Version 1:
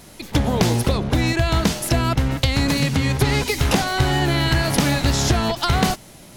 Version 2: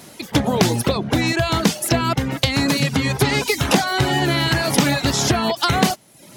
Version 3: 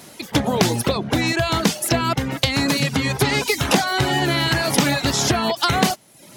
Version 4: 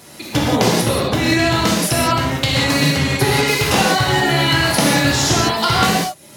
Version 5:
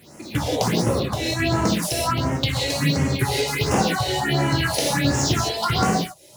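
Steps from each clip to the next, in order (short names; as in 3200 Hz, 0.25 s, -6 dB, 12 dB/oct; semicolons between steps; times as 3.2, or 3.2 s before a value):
reverb removal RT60 0.68 s; HPF 130 Hz 12 dB/oct; gain +3.5 dB
low shelf 340 Hz -2.5 dB
non-linear reverb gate 0.21 s flat, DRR -4.5 dB; gain -1.5 dB
median filter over 3 samples; phaser stages 4, 1.4 Hz, lowest notch 190–3800 Hz; gain -3.5 dB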